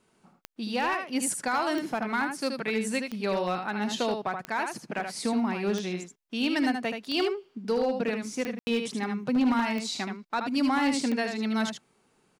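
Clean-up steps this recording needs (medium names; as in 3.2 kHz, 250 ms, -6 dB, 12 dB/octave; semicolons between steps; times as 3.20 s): clip repair -19.5 dBFS; de-click; room tone fill 8.59–8.67 s; inverse comb 77 ms -6 dB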